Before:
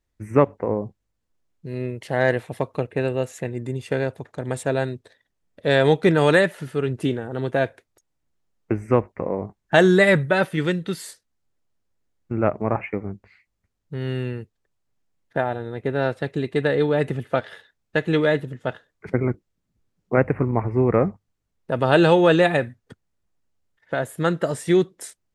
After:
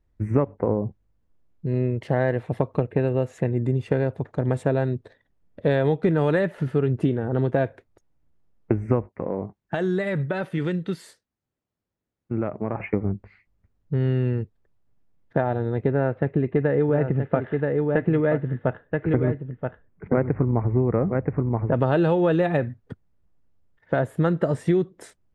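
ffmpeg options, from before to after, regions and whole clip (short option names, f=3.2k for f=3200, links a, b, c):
-filter_complex "[0:a]asettb=1/sr,asplit=3[a][b][c];[a]atrim=end=9.094[d];[b]atrim=start=9.09:end=12.8,asetpts=PTS-STARTPTS,afade=t=in:d=0.004:c=qsin,afade=t=out:st=3.706:d=0.004:c=qsin,highpass=f=290:p=1,equalizer=f=770:w=0.31:g=-5.5,acompressor=threshold=-25dB:ratio=6:attack=3.2:release=140:knee=1:detection=peak[e];[c]atrim=start=12.796[f];[d][e]acrossfade=d=0.004:c1=hsin:c2=qsin[g];[g][f]acrossfade=d=0.004:c1=qsin:c2=hsin,asettb=1/sr,asplit=3[h][i][j];[h]atrim=end=15.914[k];[i]atrim=start=15.91:end=21.74,asetpts=PTS-STARTPTS,afade=t=in:d=0.004:c=qsin,afade=t=out:st=5.826:d=0.004:c=qsin,lowpass=f=2.6k:w=0.5412,lowpass=f=2.6k:w=1.3066,aecho=1:1:977:0.422,atrim=end_sample=257103[l];[j]atrim=start=21.736[m];[k][l]acrossfade=d=0.004:c1=hsin:c2=qsin[n];[n][m]acrossfade=d=0.004:c1=qsin:c2=hsin,lowpass=f=1.2k:p=1,lowshelf=f=210:g=6,acompressor=threshold=-22dB:ratio=6,volume=4.5dB"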